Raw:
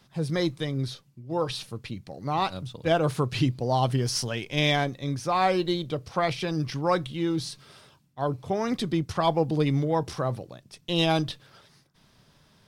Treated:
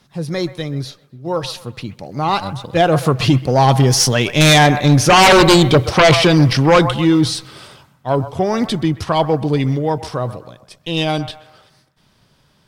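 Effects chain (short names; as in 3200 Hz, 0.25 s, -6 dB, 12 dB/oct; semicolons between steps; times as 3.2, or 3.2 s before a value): Doppler pass-by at 5.51, 13 m/s, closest 8.5 m; band-limited delay 0.129 s, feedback 39%, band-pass 1100 Hz, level -13 dB; sine folder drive 13 dB, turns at -11.5 dBFS; gain +6.5 dB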